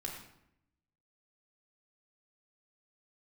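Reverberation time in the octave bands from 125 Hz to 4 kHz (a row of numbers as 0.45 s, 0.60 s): 1.1 s, 1.0 s, 0.80 s, 0.75 s, 0.70 s, 0.55 s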